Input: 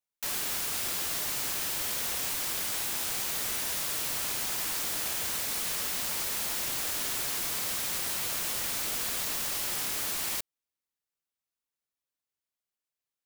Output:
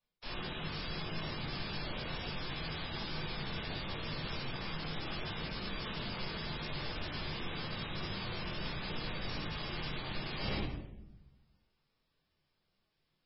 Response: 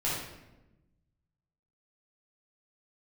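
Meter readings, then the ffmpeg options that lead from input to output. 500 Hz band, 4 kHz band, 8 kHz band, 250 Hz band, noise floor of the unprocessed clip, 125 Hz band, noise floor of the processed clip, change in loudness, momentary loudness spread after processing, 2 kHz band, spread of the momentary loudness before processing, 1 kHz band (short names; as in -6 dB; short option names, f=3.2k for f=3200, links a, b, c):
-0.5 dB, -6.0 dB, under -40 dB, +5.0 dB, under -85 dBFS, +9.0 dB, -81 dBFS, -10.5 dB, 1 LU, -4.5 dB, 0 LU, -3.0 dB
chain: -filter_complex "[0:a]highshelf=f=5.4k:g=5[a];[1:a]atrim=start_sample=2205,asetrate=52920,aresample=44100[b];[a][b]afir=irnorm=-1:irlink=0,areverse,acompressor=threshold=-40dB:ratio=10,areverse,lowshelf=f=370:g=11,volume=6dB" -ar 16000 -c:a libmp3lame -b:a 16k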